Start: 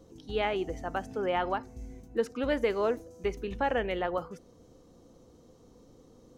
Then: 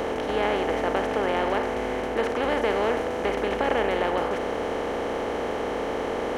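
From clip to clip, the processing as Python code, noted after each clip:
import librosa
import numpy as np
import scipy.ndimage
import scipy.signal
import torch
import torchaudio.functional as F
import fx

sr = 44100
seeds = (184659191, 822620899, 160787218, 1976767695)

y = fx.bin_compress(x, sr, power=0.2)
y = F.gain(torch.from_numpy(y), -2.5).numpy()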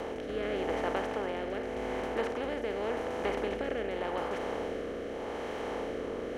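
y = fx.rotary(x, sr, hz=0.85)
y = F.gain(torch.from_numpy(y), -6.0).numpy()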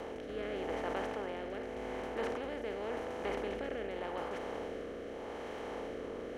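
y = fx.sustainer(x, sr, db_per_s=29.0)
y = F.gain(torch.from_numpy(y), -6.0).numpy()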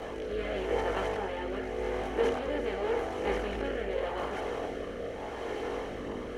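y = fx.chorus_voices(x, sr, voices=4, hz=0.47, base_ms=20, depth_ms=1.5, mix_pct=55)
y = F.gain(torch.from_numpy(y), 9.0).numpy()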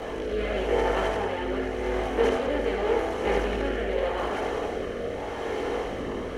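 y = x + 10.0 ** (-5.0 / 20.0) * np.pad(x, (int(76 * sr / 1000.0), 0))[:len(x)]
y = F.gain(torch.from_numpy(y), 4.5).numpy()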